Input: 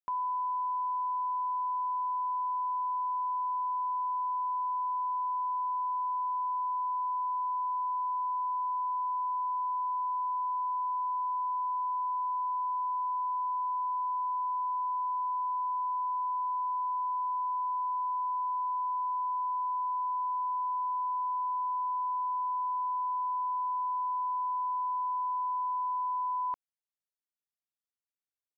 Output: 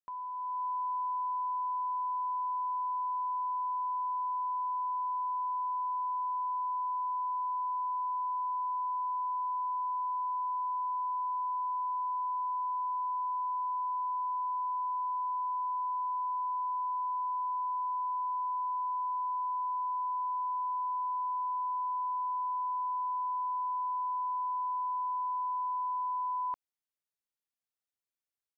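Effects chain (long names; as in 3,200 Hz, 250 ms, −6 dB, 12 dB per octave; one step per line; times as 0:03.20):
automatic gain control gain up to 6.5 dB
level −8 dB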